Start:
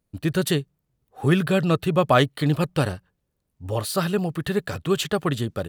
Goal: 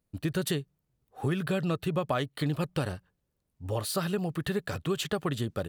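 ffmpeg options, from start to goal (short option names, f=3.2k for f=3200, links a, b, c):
-af "acompressor=threshold=-22dB:ratio=6,volume=-3.5dB"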